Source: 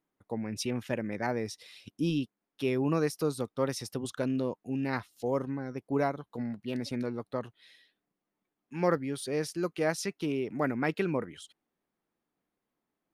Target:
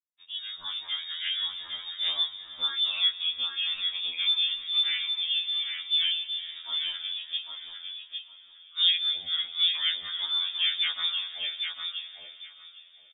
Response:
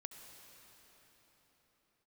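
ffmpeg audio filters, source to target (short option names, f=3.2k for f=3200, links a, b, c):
-filter_complex "[0:a]asettb=1/sr,asplit=3[a][b][c];[a]atrim=end=3.834[d];[b]atrim=start=3.83:end=4.92,asetpts=PTS-STARTPTS,afade=t=in:d=0.004:c=qsin,afade=t=out:st=1.086:d=0.004:c=qsin,equalizer=f=1.4k:t=o:w=0.7:g=9.5[e];[c]atrim=start=4.916[f];[d][e]acrossfade=d=0.004:c1=hsin:c2=qsin[g];[g][f]acrossfade=d=0.004:c1=qsin:c2=hsin,asplit=2[h][i];[i]acompressor=threshold=-40dB:ratio=16,volume=0.5dB[j];[h][j]amix=inputs=2:normalize=0,acrusher=bits=8:mix=0:aa=0.000001,flanger=delay=18:depth=7.8:speed=1.1,asettb=1/sr,asplit=3[k][l][m];[k]atrim=end=7.374[n];[l]atrim=start=7.37:end=8.78,asetpts=PTS-STARTPTS,afade=t=in:d=0.004:c=qsin,afade=t=out:st=1.406:d=0.004:c=qsin,asplit=3[o][p][q];[o]bandpass=f=730:t=q:w=8,volume=0dB[r];[p]bandpass=f=1.09k:t=q:w=8,volume=-6dB[s];[q]bandpass=f=2.44k:t=q:w=8,volume=-9dB[t];[r][s][t]amix=inputs=3:normalize=0[u];[m]atrim=start=8.776[v];[n][u]acrossfade=d=0.004:c1=hsin:c2=qsin[w];[w][v]acrossfade=d=0.004:c1=qsin:c2=hsin,aecho=1:1:805|1610|2415:0.562|0.0956|0.0163,asplit=2[x][y];[1:a]atrim=start_sample=2205,highshelf=f=4.3k:g=-10.5[z];[y][z]afir=irnorm=-1:irlink=0,volume=1dB[aa];[x][aa]amix=inputs=2:normalize=0,lowpass=f=3.2k:t=q:w=0.5098,lowpass=f=3.2k:t=q:w=0.6013,lowpass=f=3.2k:t=q:w=0.9,lowpass=f=3.2k:t=q:w=2.563,afreqshift=-3800,afftfilt=real='re*2*eq(mod(b,4),0)':imag='im*2*eq(mod(b,4),0)':win_size=2048:overlap=0.75"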